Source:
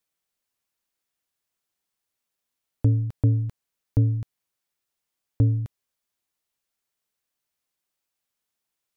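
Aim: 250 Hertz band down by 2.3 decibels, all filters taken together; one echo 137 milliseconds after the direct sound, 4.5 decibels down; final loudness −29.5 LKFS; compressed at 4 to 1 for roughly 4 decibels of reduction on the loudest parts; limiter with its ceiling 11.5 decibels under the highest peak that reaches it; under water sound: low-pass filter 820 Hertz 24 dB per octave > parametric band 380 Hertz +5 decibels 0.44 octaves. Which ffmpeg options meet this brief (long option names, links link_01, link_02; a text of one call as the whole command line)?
ffmpeg -i in.wav -af "equalizer=frequency=250:width_type=o:gain=-4,acompressor=threshold=-20dB:ratio=4,alimiter=level_in=1.5dB:limit=-24dB:level=0:latency=1,volume=-1.5dB,lowpass=frequency=820:width=0.5412,lowpass=frequency=820:width=1.3066,equalizer=frequency=380:width_type=o:width=0.44:gain=5,aecho=1:1:137:0.596,volume=5dB" out.wav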